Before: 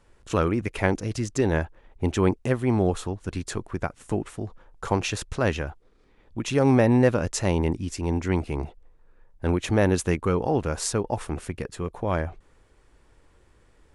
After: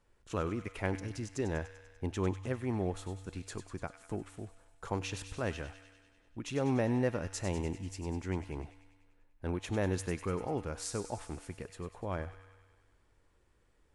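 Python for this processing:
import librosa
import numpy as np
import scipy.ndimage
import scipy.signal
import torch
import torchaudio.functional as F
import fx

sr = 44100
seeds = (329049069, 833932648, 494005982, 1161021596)

y = fx.comb_fb(x, sr, f0_hz=96.0, decay_s=1.6, harmonics='odd', damping=0.0, mix_pct=60)
y = fx.echo_wet_highpass(y, sr, ms=98, feedback_pct=66, hz=1700.0, wet_db=-9.5)
y = y * librosa.db_to_amplitude(-4.0)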